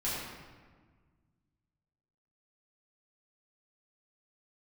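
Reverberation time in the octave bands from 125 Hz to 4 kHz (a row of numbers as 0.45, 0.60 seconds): 2.6, 2.2, 1.6, 1.5, 1.3, 0.95 seconds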